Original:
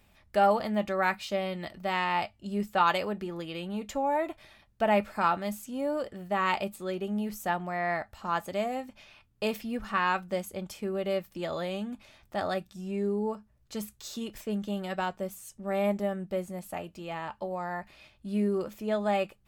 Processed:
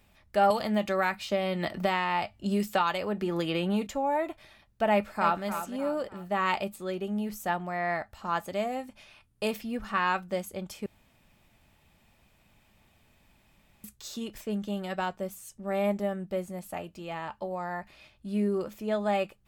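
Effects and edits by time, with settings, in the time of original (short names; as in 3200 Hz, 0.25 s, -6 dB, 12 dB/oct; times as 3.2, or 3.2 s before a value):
0.5–3.87 three-band squash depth 100%
4.91–5.46 echo throw 0.3 s, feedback 40%, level -9.5 dB
8.8–9.51 bell 9700 Hz +9 dB 0.41 oct
10.86–13.84 room tone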